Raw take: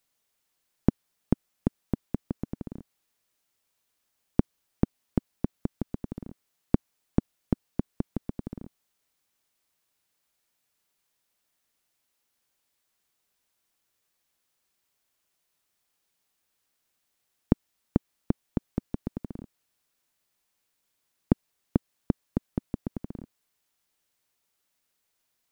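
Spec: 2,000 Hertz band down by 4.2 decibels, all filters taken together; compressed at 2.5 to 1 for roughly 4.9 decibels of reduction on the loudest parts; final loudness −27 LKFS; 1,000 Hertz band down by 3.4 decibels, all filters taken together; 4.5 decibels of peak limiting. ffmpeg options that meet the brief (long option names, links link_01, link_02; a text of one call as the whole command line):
ffmpeg -i in.wav -af "equalizer=frequency=1000:width_type=o:gain=-4,equalizer=frequency=2000:width_type=o:gain=-4,acompressor=threshold=-24dB:ratio=2.5,volume=12dB,alimiter=limit=-1dB:level=0:latency=1" out.wav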